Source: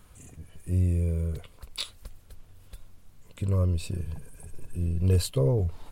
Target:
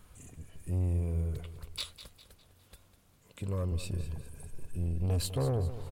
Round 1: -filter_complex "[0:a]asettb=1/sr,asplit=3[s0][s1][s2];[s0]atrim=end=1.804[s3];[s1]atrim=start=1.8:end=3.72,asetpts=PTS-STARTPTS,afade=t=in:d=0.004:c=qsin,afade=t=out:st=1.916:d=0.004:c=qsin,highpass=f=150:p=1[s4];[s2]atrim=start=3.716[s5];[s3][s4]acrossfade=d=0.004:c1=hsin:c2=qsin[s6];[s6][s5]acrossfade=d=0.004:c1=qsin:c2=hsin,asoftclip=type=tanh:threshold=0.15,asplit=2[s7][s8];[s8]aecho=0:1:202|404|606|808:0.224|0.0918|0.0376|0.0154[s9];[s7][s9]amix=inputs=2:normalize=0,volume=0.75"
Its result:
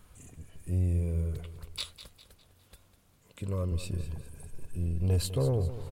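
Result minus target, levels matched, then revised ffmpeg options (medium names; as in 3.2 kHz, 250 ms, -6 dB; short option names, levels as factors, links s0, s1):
saturation: distortion -8 dB
-filter_complex "[0:a]asettb=1/sr,asplit=3[s0][s1][s2];[s0]atrim=end=1.804[s3];[s1]atrim=start=1.8:end=3.72,asetpts=PTS-STARTPTS,afade=t=in:d=0.004:c=qsin,afade=t=out:st=1.916:d=0.004:c=qsin,highpass=f=150:p=1[s4];[s2]atrim=start=3.716[s5];[s3][s4]acrossfade=d=0.004:c1=hsin:c2=qsin[s6];[s6][s5]acrossfade=d=0.004:c1=qsin:c2=hsin,asoftclip=type=tanh:threshold=0.0708,asplit=2[s7][s8];[s8]aecho=0:1:202|404|606|808:0.224|0.0918|0.0376|0.0154[s9];[s7][s9]amix=inputs=2:normalize=0,volume=0.75"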